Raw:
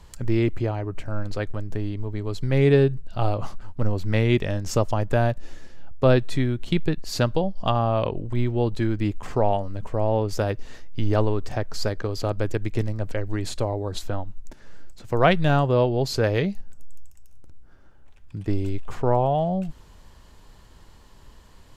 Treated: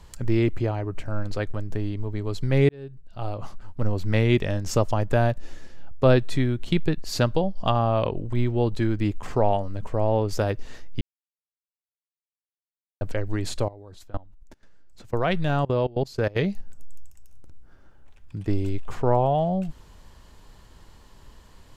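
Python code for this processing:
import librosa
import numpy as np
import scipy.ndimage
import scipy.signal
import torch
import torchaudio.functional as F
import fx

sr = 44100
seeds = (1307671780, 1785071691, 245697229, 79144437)

y = fx.level_steps(x, sr, step_db=22, at=(13.68, 16.39))
y = fx.edit(y, sr, fx.fade_in_span(start_s=2.69, length_s=1.35),
    fx.silence(start_s=11.01, length_s=2.0), tone=tone)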